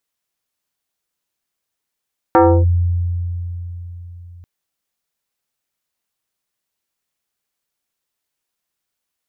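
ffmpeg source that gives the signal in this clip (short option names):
-f lavfi -i "aevalsrc='0.501*pow(10,-3*t/4.09)*sin(2*PI*87.4*t+2.6*clip(1-t/0.3,0,1)*sin(2*PI*4.84*87.4*t))':d=2.09:s=44100"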